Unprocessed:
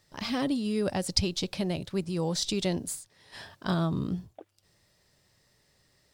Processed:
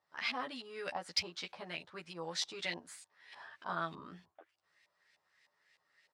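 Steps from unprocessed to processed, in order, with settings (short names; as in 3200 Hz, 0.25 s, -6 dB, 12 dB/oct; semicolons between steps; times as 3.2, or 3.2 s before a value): high shelf 7200 Hz +6.5 dB; LFO low-pass saw up 3.3 Hz 830–2500 Hz; differentiator; in parallel at -11.5 dB: overloaded stage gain 35 dB; on the sum: doubler 12 ms -2.5 dB; gain +4.5 dB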